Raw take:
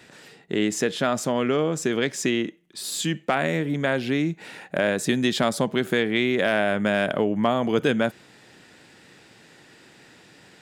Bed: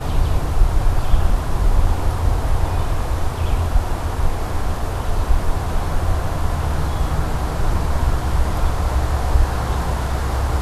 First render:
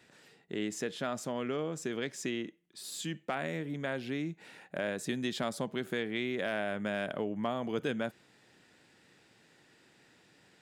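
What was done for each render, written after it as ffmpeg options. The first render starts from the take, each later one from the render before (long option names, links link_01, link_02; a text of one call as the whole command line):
ffmpeg -i in.wav -af "volume=-12dB" out.wav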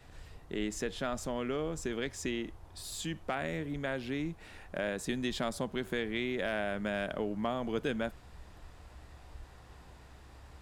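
ffmpeg -i in.wav -i bed.wav -filter_complex "[1:a]volume=-33.5dB[link_01];[0:a][link_01]amix=inputs=2:normalize=0" out.wav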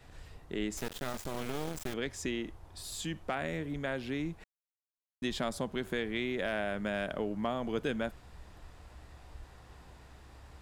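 ffmpeg -i in.wav -filter_complex "[0:a]asettb=1/sr,asplit=3[link_01][link_02][link_03];[link_01]atrim=end=0.774[link_04];[link_02]atrim=start=0.77:end=1.94,asetpts=PTS-STARTPTS,afade=type=in:duration=0.004:curve=qsin,afade=type=out:start_time=1.166:duration=0.004:curve=qsin,acrusher=bits=4:dc=4:mix=0:aa=0.000001[link_05];[link_03]atrim=start=1.936[link_06];[link_04][link_05]acrossfade=duration=0.004:curve1=hsin:curve2=qsin[link_07];[link_07][link_06]acrossfade=duration=0.004:curve1=qsin:curve2=hsin,asplit=3[link_08][link_09][link_10];[link_08]atrim=end=4.44,asetpts=PTS-STARTPTS,afade=type=out:start_time=4.436:duration=0.004:curve=hsin[link_11];[link_09]atrim=start=4.44:end=5.22,asetpts=PTS-STARTPTS,volume=0[link_12];[link_10]atrim=start=5.22,asetpts=PTS-STARTPTS,afade=type=in:duration=0.004:curve=hsin[link_13];[link_11][link_12][link_13]concat=n=3:v=0:a=1" out.wav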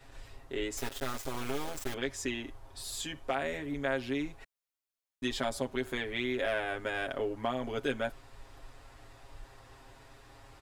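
ffmpeg -i in.wav -af "equalizer=frequency=170:width_type=o:width=0.55:gain=-14.5,aecho=1:1:7.4:0.83" out.wav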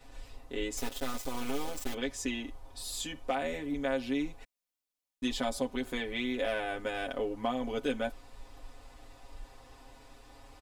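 ffmpeg -i in.wav -af "equalizer=frequency=1600:width_type=o:width=0.89:gain=-4.5,aecho=1:1:4:0.51" out.wav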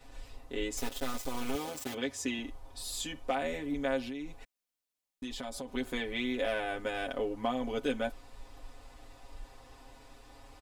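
ffmpeg -i in.wav -filter_complex "[0:a]asettb=1/sr,asplit=3[link_01][link_02][link_03];[link_01]atrim=end=1.554[link_04];[link_02]atrim=start=1.55:end=2.39,asetpts=PTS-STARTPTS,afade=type=in:duration=0.004:curve=qsin,afade=type=out:start_time=0.836:duration=0.004:curve=qsin,highpass=frequency=65:width=0.5412,highpass=frequency=65:width=1.3066[link_05];[link_03]atrim=start=2.386[link_06];[link_04][link_05]acrossfade=duration=0.004:curve1=hsin:curve2=qsin[link_07];[link_07][link_06]acrossfade=duration=0.004:curve1=qsin:curve2=hsin,asplit=3[link_08][link_09][link_10];[link_08]afade=type=out:start_time=4.04:duration=0.02[link_11];[link_09]acompressor=threshold=-36dB:ratio=6:attack=3.2:release=140:knee=1:detection=peak,afade=type=in:start_time=4.04:duration=0.02,afade=type=out:start_time=5.67:duration=0.02[link_12];[link_10]afade=type=in:start_time=5.67:duration=0.02[link_13];[link_11][link_12][link_13]amix=inputs=3:normalize=0" out.wav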